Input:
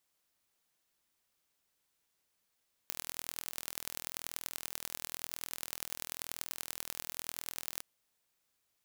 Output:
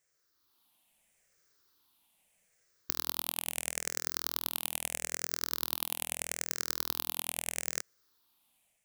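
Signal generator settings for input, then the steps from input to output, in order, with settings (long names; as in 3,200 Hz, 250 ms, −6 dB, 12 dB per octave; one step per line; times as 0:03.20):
impulse train 41 per second, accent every 4, −9 dBFS 4.91 s
rippled gain that drifts along the octave scale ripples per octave 0.53, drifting −0.78 Hz, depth 12 dB
automatic gain control gain up to 6 dB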